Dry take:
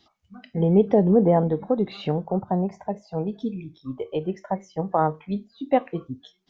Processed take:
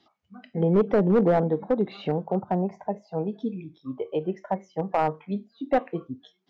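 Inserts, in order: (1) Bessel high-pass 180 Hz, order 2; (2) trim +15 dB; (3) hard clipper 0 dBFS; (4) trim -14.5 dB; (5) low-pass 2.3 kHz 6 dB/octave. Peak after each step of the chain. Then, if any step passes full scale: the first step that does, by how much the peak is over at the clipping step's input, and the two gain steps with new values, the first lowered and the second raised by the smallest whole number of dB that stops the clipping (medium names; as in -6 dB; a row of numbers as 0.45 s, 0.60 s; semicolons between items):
-6.0 dBFS, +9.0 dBFS, 0.0 dBFS, -14.5 dBFS, -14.5 dBFS; step 2, 9.0 dB; step 2 +6 dB, step 4 -5.5 dB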